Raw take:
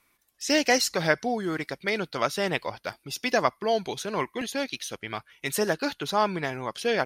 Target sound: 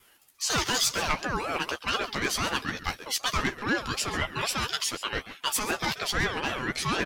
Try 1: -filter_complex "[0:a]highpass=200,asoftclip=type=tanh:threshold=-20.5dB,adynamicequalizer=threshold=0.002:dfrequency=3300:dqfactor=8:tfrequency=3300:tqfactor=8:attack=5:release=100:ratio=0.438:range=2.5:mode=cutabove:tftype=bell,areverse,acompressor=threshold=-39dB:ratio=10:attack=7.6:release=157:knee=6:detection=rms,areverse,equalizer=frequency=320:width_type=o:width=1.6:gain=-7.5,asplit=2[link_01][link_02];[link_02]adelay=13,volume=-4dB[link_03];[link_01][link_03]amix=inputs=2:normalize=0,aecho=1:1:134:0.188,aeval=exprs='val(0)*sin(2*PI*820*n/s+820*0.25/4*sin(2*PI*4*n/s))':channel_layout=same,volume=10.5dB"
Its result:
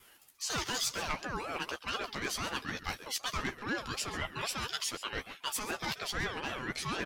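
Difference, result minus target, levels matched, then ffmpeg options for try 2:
downward compressor: peak gain reduction +8 dB
-filter_complex "[0:a]highpass=200,asoftclip=type=tanh:threshold=-20.5dB,adynamicequalizer=threshold=0.002:dfrequency=3300:dqfactor=8:tfrequency=3300:tqfactor=8:attack=5:release=100:ratio=0.438:range=2.5:mode=cutabove:tftype=bell,areverse,acompressor=threshold=-30dB:ratio=10:attack=7.6:release=157:knee=6:detection=rms,areverse,equalizer=frequency=320:width_type=o:width=1.6:gain=-7.5,asplit=2[link_01][link_02];[link_02]adelay=13,volume=-4dB[link_03];[link_01][link_03]amix=inputs=2:normalize=0,aecho=1:1:134:0.188,aeval=exprs='val(0)*sin(2*PI*820*n/s+820*0.25/4*sin(2*PI*4*n/s))':channel_layout=same,volume=10.5dB"

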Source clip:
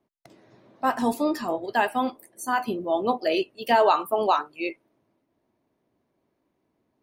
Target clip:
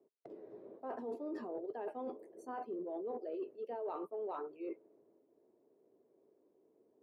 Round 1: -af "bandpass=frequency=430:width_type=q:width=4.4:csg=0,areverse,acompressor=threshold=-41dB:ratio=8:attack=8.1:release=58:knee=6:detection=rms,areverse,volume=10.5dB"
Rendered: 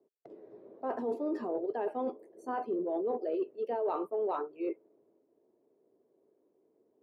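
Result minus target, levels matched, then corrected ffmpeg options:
downward compressor: peak gain reduction −9 dB
-af "bandpass=frequency=430:width_type=q:width=4.4:csg=0,areverse,acompressor=threshold=-51dB:ratio=8:attack=8.1:release=58:knee=6:detection=rms,areverse,volume=10.5dB"

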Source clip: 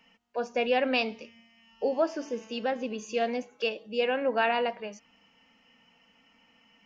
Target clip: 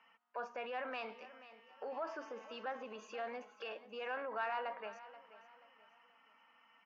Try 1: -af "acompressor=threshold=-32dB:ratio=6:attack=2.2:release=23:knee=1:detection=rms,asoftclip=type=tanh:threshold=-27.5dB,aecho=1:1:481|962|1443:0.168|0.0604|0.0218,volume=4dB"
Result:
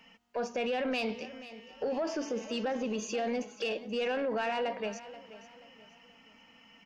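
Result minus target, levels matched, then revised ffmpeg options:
1,000 Hz band −5.0 dB
-af "acompressor=threshold=-32dB:ratio=6:attack=2.2:release=23:knee=1:detection=rms,bandpass=frequency=1200:width_type=q:width=2.2:csg=0,asoftclip=type=tanh:threshold=-27.5dB,aecho=1:1:481|962|1443:0.168|0.0604|0.0218,volume=4dB"

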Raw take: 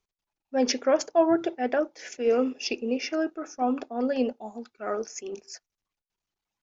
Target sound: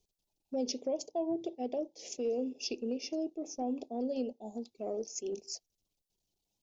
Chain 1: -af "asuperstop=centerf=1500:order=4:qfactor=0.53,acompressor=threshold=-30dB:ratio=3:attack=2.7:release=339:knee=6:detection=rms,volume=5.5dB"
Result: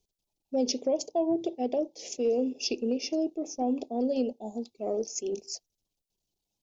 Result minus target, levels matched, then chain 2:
downward compressor: peak gain reduction −6.5 dB
-af "asuperstop=centerf=1500:order=4:qfactor=0.53,acompressor=threshold=-40dB:ratio=3:attack=2.7:release=339:knee=6:detection=rms,volume=5.5dB"

